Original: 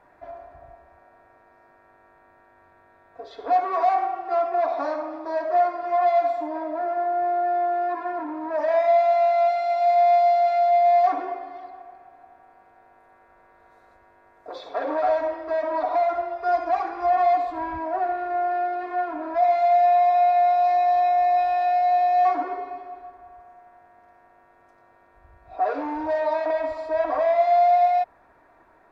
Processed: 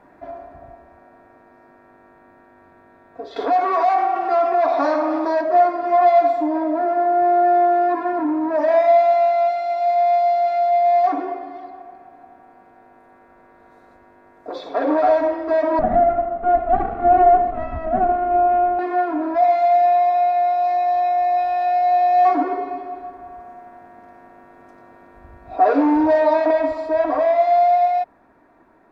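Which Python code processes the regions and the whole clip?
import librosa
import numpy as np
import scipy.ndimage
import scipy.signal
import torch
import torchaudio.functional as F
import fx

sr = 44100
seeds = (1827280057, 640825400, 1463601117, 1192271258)

y = fx.chain(x, sr, fx.low_shelf(hz=450.0, db=-10.5),
    fx.env_flatten(amount_pct=50), at=(3.36, 5.41))
y = fx.chain(y, sr, fx.lower_of_two(delay_ms=1.5),
    fx.lowpass(hz=1100.0, slope=12),
    fx.low_shelf(hz=83.0, db=11.0), at=(15.79, 18.79))
y = fx.rider(y, sr, range_db=10, speed_s=2.0)
y = fx.peak_eq(y, sr, hz=240.0, db=11.5, octaves=1.3)
y = y * librosa.db_to_amplitude(2.0)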